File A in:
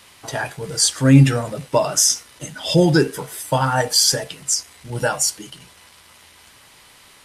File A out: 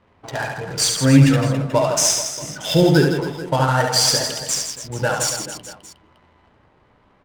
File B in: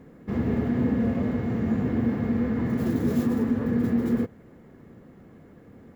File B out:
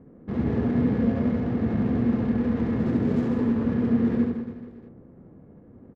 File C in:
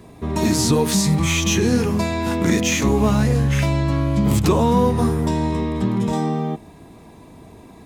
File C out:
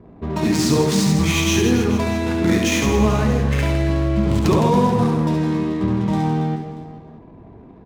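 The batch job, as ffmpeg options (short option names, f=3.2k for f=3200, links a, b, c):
-filter_complex "[0:a]adynamicsmooth=sensitivity=5.5:basefreq=670,asplit=2[a][b];[b]aecho=0:1:70|161|279.3|433.1|633:0.631|0.398|0.251|0.158|0.1[c];[a][c]amix=inputs=2:normalize=0,volume=-1dB"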